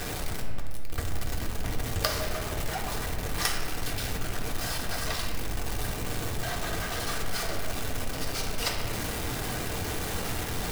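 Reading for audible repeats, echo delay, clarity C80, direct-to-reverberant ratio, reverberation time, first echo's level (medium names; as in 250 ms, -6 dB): no echo, no echo, 5.5 dB, -0.5 dB, 2.2 s, no echo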